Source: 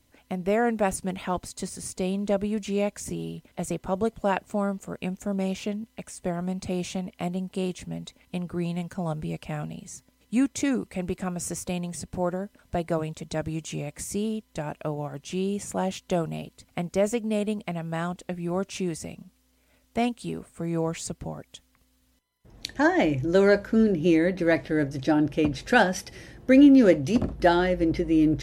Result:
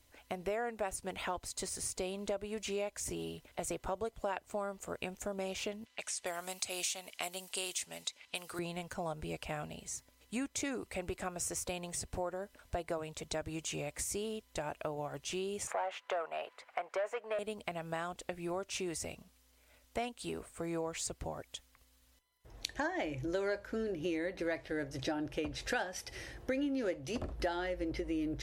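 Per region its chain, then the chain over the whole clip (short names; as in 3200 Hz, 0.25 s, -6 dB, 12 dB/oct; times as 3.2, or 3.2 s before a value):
5.85–8.59 low-pass opened by the level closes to 2900 Hz, open at -27.5 dBFS + tilt +4.5 dB/oct
15.67–17.39 overdrive pedal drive 20 dB, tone 6700 Hz, clips at -11 dBFS + three-band isolator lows -24 dB, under 490 Hz, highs -23 dB, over 2100 Hz
whole clip: bell 190 Hz -14 dB 1.2 oct; compressor 4:1, threshold -35 dBFS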